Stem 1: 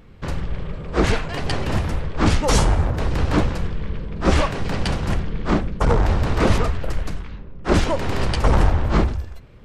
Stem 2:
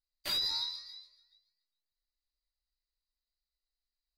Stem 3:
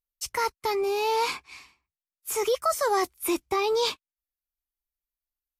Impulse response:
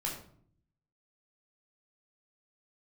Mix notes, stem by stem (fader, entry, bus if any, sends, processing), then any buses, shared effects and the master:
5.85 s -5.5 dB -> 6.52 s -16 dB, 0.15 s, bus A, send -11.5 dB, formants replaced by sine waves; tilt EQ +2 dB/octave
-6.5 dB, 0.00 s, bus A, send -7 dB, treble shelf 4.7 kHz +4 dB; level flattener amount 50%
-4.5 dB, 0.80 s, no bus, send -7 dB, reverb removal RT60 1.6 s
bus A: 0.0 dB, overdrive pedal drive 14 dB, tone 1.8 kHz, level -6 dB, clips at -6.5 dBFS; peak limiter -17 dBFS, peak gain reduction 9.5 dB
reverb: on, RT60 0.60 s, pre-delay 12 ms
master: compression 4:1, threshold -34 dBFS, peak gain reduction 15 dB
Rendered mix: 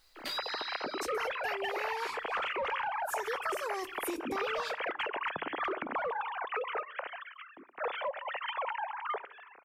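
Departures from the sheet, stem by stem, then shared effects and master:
stem 3: missing reverb removal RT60 1.6 s; reverb return -8.5 dB

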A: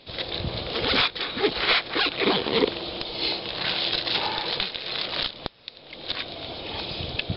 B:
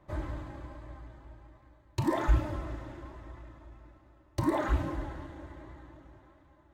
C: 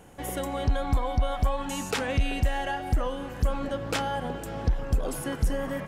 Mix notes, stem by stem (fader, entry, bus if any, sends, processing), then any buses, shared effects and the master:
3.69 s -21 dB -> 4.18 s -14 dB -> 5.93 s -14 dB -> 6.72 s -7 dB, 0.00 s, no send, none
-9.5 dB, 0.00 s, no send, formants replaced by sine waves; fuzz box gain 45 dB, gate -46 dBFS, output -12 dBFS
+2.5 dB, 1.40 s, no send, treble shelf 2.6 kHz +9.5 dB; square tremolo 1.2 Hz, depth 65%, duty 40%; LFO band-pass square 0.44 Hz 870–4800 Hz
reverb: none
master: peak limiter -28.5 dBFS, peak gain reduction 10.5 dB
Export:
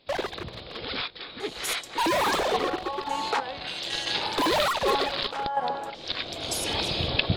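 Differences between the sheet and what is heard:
stem A -21.0 dB -> -10.0 dB; stem C +2.5 dB -> +10.0 dB; master: missing peak limiter -28.5 dBFS, peak gain reduction 10.5 dB

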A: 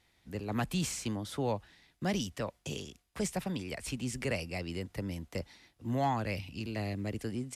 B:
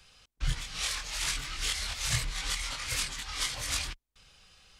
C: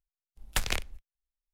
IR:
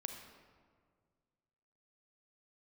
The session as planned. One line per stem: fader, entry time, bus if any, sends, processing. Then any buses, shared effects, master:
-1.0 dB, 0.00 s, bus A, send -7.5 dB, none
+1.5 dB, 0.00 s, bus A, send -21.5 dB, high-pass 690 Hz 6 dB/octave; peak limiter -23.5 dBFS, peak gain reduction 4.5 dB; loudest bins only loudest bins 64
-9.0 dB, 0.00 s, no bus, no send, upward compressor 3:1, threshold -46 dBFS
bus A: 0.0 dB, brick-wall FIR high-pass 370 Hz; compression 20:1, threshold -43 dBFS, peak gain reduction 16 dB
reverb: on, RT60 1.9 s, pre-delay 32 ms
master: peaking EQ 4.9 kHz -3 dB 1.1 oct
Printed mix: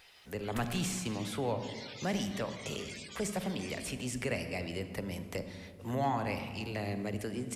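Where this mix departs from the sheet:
stem A -1.0 dB -> +7.5 dB; stem C -9.0 dB -> -16.0 dB

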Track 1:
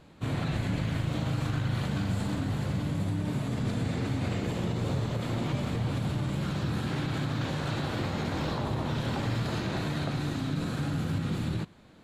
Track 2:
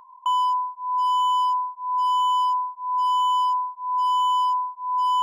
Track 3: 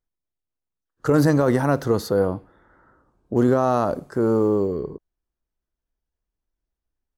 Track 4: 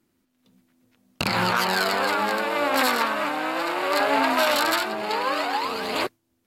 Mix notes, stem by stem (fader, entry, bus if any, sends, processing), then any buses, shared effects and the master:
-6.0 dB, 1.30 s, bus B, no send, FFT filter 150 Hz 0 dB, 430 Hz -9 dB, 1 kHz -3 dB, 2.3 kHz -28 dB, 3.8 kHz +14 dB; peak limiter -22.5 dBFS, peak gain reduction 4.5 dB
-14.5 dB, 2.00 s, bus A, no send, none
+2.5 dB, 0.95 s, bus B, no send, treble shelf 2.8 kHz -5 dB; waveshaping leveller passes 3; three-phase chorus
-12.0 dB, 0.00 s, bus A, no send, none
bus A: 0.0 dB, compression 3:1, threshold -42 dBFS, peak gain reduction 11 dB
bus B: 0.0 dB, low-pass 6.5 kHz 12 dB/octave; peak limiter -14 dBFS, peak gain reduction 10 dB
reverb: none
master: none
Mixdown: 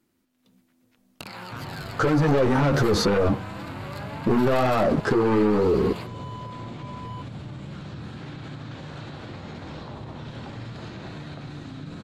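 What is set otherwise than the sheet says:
stem 1: missing FFT filter 150 Hz 0 dB, 430 Hz -9 dB, 1 kHz -3 dB, 2.3 kHz -28 dB, 3.8 kHz +14 dB; stem 3 +2.5 dB -> +11.5 dB; stem 4 -12.0 dB -> -1.0 dB

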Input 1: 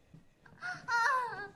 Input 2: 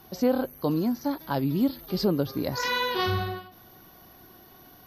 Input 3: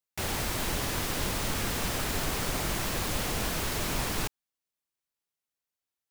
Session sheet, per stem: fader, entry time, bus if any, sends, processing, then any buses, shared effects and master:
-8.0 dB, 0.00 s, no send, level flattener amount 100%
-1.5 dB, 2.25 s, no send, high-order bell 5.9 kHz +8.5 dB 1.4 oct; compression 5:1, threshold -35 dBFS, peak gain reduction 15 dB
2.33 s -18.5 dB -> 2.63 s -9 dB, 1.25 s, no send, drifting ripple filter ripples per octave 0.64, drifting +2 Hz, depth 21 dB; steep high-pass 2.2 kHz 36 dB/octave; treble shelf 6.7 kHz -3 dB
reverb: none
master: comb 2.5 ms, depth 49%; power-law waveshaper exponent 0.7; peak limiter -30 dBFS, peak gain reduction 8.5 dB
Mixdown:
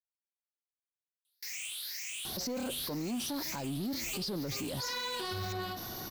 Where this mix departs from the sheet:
stem 1: muted; stem 2: missing compression 5:1, threshold -35 dBFS, peak gain reduction 15 dB; master: missing comb 2.5 ms, depth 49%

